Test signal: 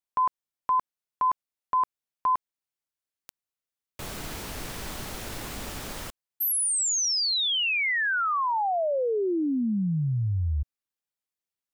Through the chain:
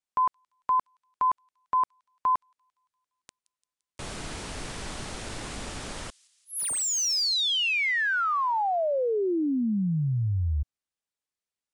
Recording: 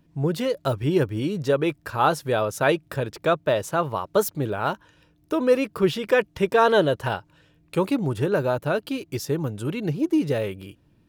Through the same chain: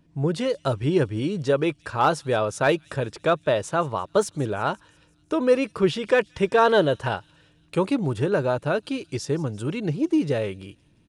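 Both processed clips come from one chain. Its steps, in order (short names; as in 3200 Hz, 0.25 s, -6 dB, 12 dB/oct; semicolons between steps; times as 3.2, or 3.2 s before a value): thin delay 0.172 s, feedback 59%, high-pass 4600 Hz, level -18 dB; downsampling 22050 Hz; slew limiter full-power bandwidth 340 Hz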